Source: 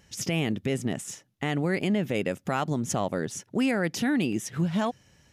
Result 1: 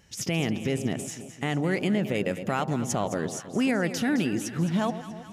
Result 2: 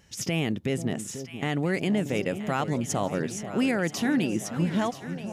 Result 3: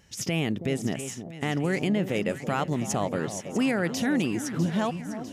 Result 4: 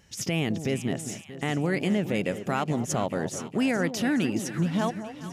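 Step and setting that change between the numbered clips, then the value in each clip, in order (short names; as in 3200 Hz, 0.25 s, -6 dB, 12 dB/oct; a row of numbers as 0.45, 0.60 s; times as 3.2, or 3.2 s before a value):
echo with dull and thin repeats by turns, time: 0.107, 0.489, 0.325, 0.211 s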